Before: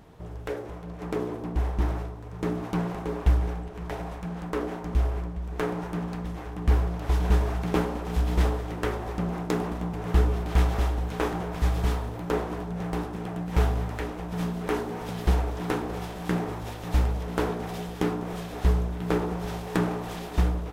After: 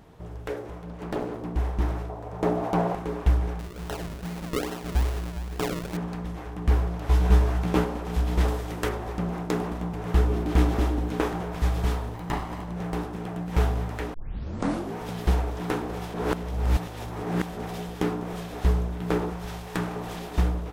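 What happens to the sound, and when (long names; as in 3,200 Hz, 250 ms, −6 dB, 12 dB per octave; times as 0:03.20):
0:00.89–0:01.43: highs frequency-modulated by the lows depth 0.76 ms
0:02.09–0:02.95: parametric band 670 Hz +12.5 dB 1.2 octaves
0:03.59–0:05.97: sample-and-hold swept by an LFO 38× 2.4 Hz
0:07.08–0:07.84: double-tracking delay 16 ms −5 dB
0:08.48–0:08.89: high-shelf EQ 4,000 Hz +8.5 dB
0:10.30–0:11.21: parametric band 290 Hz +11.5 dB
0:12.14–0:12.76: lower of the sound and its delayed copy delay 1 ms
0:14.14: tape start 0.81 s
0:16.14–0:17.57: reverse
0:19.30–0:19.96: parametric band 340 Hz −6 dB 2.5 octaves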